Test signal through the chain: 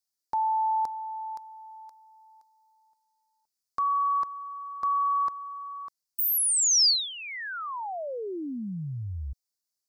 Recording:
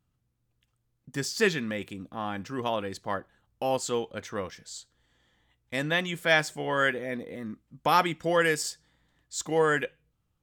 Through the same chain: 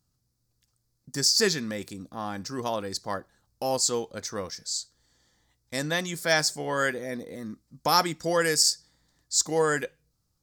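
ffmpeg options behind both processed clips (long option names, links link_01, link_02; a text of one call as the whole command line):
ffmpeg -i in.wav -af "highshelf=frequency=3800:width_type=q:width=3:gain=8" out.wav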